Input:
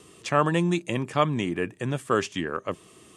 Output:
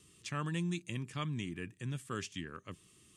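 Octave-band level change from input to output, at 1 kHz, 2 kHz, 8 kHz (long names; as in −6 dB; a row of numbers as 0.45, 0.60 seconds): −18.0, −13.0, −8.0 decibels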